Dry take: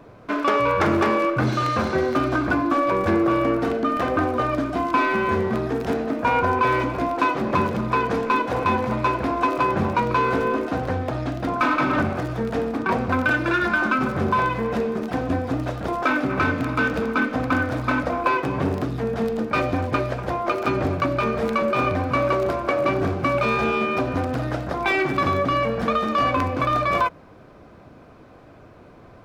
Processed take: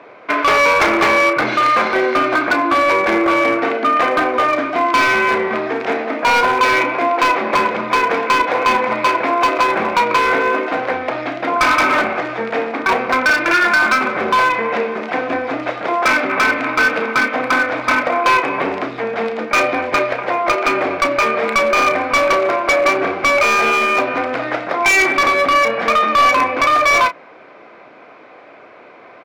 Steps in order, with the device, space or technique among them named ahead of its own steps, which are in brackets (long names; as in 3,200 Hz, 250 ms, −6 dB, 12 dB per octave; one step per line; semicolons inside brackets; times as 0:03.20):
megaphone (band-pass filter 470–3,900 Hz; parametric band 2,200 Hz +9 dB 0.41 octaves; hard clipping −18.5 dBFS, distortion −13 dB; double-tracking delay 32 ms −11 dB)
level +9 dB